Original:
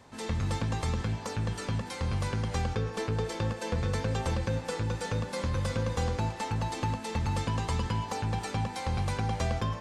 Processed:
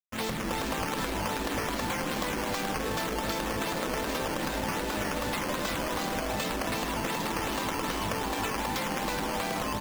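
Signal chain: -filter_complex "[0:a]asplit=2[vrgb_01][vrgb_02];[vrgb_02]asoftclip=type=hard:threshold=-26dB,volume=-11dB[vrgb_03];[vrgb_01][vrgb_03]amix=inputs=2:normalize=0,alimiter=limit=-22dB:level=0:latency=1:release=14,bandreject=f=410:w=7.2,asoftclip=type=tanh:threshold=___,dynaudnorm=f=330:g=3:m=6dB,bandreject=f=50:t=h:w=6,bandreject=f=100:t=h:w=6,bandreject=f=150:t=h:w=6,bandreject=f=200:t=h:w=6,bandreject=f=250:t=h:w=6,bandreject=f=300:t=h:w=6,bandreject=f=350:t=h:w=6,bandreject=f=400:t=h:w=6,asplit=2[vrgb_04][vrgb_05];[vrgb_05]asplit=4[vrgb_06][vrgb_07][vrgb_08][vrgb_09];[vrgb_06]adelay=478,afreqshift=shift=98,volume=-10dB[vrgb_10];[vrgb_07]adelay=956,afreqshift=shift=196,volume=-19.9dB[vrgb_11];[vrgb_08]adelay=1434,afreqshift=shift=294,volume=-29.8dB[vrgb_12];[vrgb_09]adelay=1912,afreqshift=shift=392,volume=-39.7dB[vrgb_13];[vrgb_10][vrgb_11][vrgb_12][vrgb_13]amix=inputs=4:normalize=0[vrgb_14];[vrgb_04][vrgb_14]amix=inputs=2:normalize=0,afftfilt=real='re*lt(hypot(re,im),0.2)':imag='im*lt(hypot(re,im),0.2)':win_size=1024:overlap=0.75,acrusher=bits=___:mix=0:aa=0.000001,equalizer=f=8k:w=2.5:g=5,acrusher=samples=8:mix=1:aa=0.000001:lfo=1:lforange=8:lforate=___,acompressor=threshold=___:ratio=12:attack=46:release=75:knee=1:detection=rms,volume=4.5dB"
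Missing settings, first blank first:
-25dB, 6, 2.6, -35dB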